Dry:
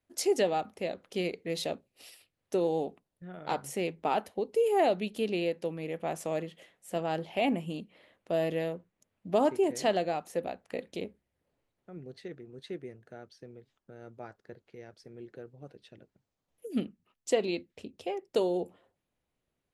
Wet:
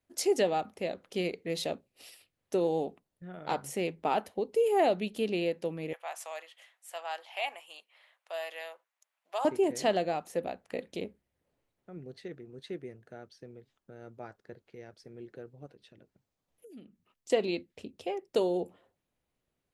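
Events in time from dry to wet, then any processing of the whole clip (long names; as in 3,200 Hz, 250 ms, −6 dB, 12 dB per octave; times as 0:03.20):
0:05.93–0:09.45: high-pass filter 790 Hz 24 dB per octave
0:15.66–0:17.30: downward compressor 3 to 1, threshold −53 dBFS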